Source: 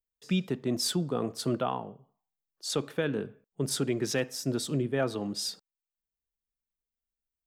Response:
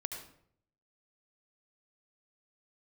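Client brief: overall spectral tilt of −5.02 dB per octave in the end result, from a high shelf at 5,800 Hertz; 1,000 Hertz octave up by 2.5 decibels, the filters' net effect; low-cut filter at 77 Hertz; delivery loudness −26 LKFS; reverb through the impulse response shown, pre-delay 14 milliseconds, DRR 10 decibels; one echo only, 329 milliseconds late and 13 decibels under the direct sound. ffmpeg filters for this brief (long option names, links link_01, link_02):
-filter_complex "[0:a]highpass=77,equalizer=frequency=1000:width_type=o:gain=3.5,highshelf=frequency=5800:gain=-5.5,aecho=1:1:329:0.224,asplit=2[link_01][link_02];[1:a]atrim=start_sample=2205,adelay=14[link_03];[link_02][link_03]afir=irnorm=-1:irlink=0,volume=-10dB[link_04];[link_01][link_04]amix=inputs=2:normalize=0,volume=5dB"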